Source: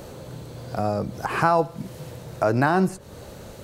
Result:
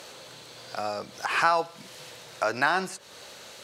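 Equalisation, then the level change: band-pass 3700 Hz, Q 0.72; +6.5 dB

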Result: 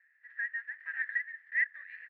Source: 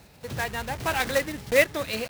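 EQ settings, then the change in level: Butterworth band-pass 1800 Hz, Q 7.6; +2.5 dB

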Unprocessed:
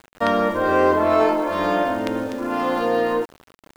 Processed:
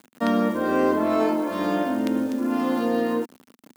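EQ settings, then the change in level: HPF 110 Hz 12 dB/oct; bell 240 Hz +13.5 dB 0.89 oct; high shelf 5800 Hz +11 dB; -7.5 dB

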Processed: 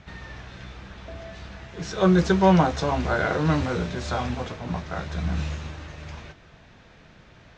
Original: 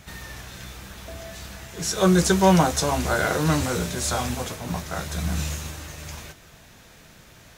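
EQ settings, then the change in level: LPF 8900 Hz 24 dB/oct; air absorption 200 m; 0.0 dB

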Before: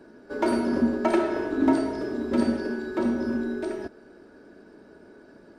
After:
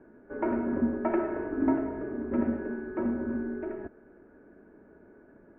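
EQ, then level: steep low-pass 2300 Hz 36 dB/oct; air absorption 220 m; low shelf 96 Hz +6.5 dB; -5.0 dB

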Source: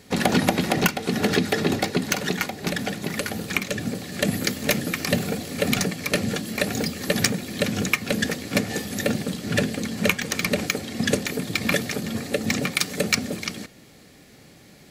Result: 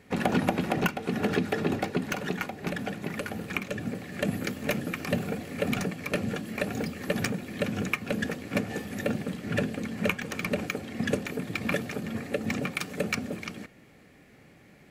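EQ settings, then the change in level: dynamic EQ 2000 Hz, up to -7 dB, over -41 dBFS, Q 3.4; resonant high shelf 3100 Hz -8 dB, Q 1.5; -5.0 dB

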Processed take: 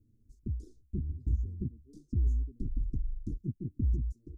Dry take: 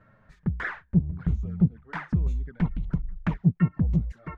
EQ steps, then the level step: inverse Chebyshev band-stop 790–2500 Hz, stop band 60 dB; fixed phaser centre 630 Hz, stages 6; 0.0 dB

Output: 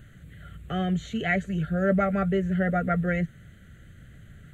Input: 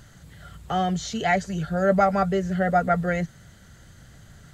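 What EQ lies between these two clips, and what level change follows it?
high shelf 4000 Hz -7 dB; fixed phaser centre 2200 Hz, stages 4; +1.0 dB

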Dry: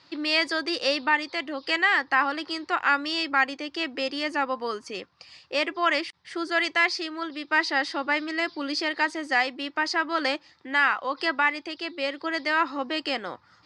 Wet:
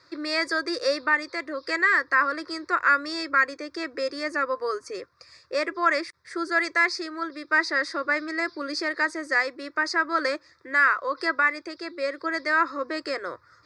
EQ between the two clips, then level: fixed phaser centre 810 Hz, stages 6; +3.5 dB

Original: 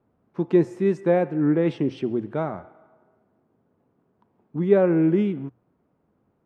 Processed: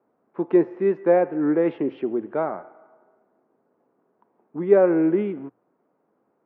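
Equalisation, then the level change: HPF 350 Hz 12 dB/oct; Bessel low-pass 1700 Hz, order 4; +4.0 dB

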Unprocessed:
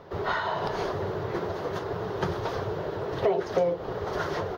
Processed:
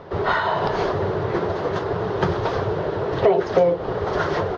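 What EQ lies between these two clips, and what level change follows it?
air absorption 90 m; +8.0 dB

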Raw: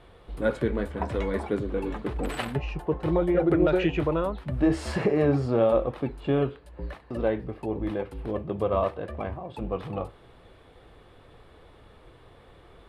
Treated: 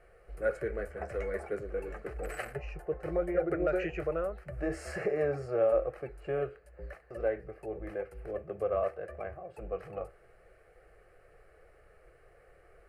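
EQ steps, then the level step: bell 99 Hz -9.5 dB 1.6 oct; fixed phaser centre 960 Hz, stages 6; -3.5 dB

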